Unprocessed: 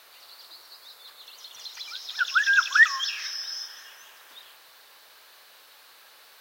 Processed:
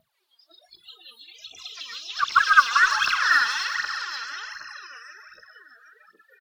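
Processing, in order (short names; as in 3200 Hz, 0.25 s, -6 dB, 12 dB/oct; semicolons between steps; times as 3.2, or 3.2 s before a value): on a send: diffused feedback echo 0.531 s, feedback 44%, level -4.5 dB; on the sum: harmoniser -4 st -2 dB; phaser 1.3 Hz, delay 4.5 ms, feedback 74%; spectral noise reduction 26 dB; gain -3.5 dB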